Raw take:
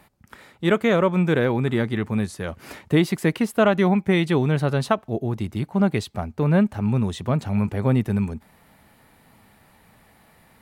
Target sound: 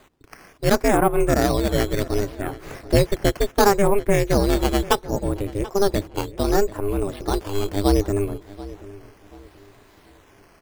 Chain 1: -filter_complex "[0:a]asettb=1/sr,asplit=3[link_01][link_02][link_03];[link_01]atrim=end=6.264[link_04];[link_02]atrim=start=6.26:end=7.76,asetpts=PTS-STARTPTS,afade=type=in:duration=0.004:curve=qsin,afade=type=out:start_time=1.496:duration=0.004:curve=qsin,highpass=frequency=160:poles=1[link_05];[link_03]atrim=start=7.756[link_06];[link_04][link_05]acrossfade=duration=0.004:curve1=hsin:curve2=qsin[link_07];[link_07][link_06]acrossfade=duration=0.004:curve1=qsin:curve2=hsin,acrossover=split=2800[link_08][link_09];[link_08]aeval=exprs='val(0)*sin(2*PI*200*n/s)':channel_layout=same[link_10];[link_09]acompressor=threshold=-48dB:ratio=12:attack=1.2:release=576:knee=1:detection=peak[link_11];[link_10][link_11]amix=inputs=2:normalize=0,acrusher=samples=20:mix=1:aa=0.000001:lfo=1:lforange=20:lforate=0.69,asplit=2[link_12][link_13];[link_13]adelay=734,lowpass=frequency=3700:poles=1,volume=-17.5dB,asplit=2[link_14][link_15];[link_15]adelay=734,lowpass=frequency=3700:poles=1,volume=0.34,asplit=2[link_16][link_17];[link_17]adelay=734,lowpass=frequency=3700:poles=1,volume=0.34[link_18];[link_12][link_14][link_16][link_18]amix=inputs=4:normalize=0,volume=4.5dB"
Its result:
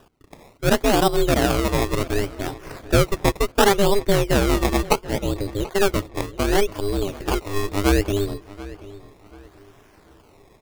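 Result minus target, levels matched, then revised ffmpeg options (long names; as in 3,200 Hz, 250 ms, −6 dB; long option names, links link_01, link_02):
sample-and-hold swept by an LFO: distortion +8 dB
-filter_complex "[0:a]asettb=1/sr,asplit=3[link_01][link_02][link_03];[link_01]atrim=end=6.264[link_04];[link_02]atrim=start=6.26:end=7.76,asetpts=PTS-STARTPTS,afade=type=in:duration=0.004:curve=qsin,afade=type=out:start_time=1.496:duration=0.004:curve=qsin,highpass=frequency=160:poles=1[link_05];[link_03]atrim=start=7.756[link_06];[link_04][link_05]acrossfade=duration=0.004:curve1=hsin:curve2=qsin[link_07];[link_07][link_06]acrossfade=duration=0.004:curve1=qsin:curve2=hsin,acrossover=split=2800[link_08][link_09];[link_08]aeval=exprs='val(0)*sin(2*PI*200*n/s)':channel_layout=same[link_10];[link_09]acompressor=threshold=-48dB:ratio=12:attack=1.2:release=576:knee=1:detection=peak[link_11];[link_10][link_11]amix=inputs=2:normalize=0,acrusher=samples=8:mix=1:aa=0.000001:lfo=1:lforange=8:lforate=0.69,asplit=2[link_12][link_13];[link_13]adelay=734,lowpass=frequency=3700:poles=1,volume=-17.5dB,asplit=2[link_14][link_15];[link_15]adelay=734,lowpass=frequency=3700:poles=1,volume=0.34,asplit=2[link_16][link_17];[link_17]adelay=734,lowpass=frequency=3700:poles=1,volume=0.34[link_18];[link_12][link_14][link_16][link_18]amix=inputs=4:normalize=0,volume=4.5dB"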